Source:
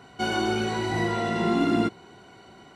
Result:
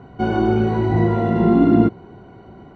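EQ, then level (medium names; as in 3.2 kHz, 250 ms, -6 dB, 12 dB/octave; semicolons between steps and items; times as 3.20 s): distance through air 110 m; tilt shelf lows +9.5 dB, about 1.5 kHz; bass shelf 110 Hz +8 dB; 0.0 dB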